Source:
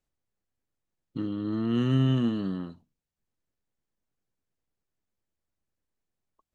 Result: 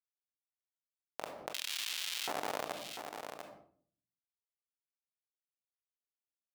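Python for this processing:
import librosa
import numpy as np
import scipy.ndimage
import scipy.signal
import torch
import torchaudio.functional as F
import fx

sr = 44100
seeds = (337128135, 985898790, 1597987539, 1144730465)

y = fx.reverse_delay_fb(x, sr, ms=591, feedback_pct=48, wet_db=-8.5)
y = scipy.signal.sosfilt(scipy.signal.ellip(4, 1.0, 40, 150.0, 'highpass', fs=sr, output='sos'), y)
y = fx.low_shelf(y, sr, hz=200.0, db=10.5)
y = np.sign(y) * np.maximum(np.abs(y) - 10.0 ** (-42.0 / 20.0), 0.0)
y = fx.whisperise(y, sr, seeds[0])
y = fx.env_flanger(y, sr, rest_ms=7.0, full_db=-21.5)
y = fx.schmitt(y, sr, flips_db=-24.0)
y = fx.filter_lfo_highpass(y, sr, shape='square', hz=0.66, low_hz=640.0, high_hz=3200.0, q=1.8)
y = y + 10.0 ** (-23.5 / 20.0) * np.pad(y, (int(695 * sr / 1000.0), 0))[:len(y)]
y = fx.room_shoebox(y, sr, seeds[1], volume_m3=540.0, walls='furnished', distance_m=0.39)
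y = fx.env_flatten(y, sr, amount_pct=70)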